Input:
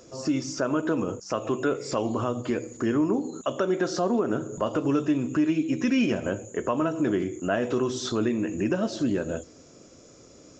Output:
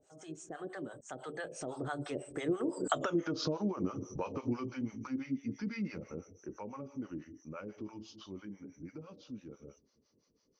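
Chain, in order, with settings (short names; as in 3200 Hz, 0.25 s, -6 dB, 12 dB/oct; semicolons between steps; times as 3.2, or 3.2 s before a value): Doppler pass-by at 3.06, 55 m/s, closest 10 m; compressor 10:1, threshold -37 dBFS, peak gain reduction 16.5 dB; harmonic tremolo 6 Hz, depth 100%, crossover 590 Hz; gain +11.5 dB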